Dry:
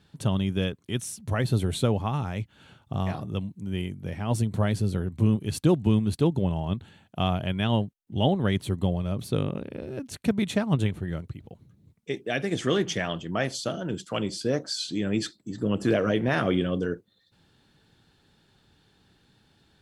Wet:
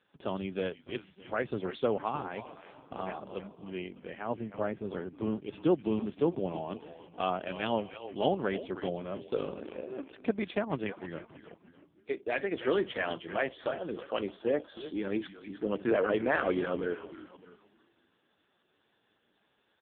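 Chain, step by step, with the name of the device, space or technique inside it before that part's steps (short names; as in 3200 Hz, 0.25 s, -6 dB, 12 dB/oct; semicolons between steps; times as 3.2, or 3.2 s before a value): 4.28–4.84 air absorption 450 m; frequency-shifting echo 0.312 s, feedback 34%, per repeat -130 Hz, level -11 dB; dynamic EQ 6600 Hz, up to -3 dB, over -50 dBFS, Q 1; satellite phone (BPF 350–3400 Hz; echo 0.608 s -23 dB; AMR-NB 5.15 kbps 8000 Hz)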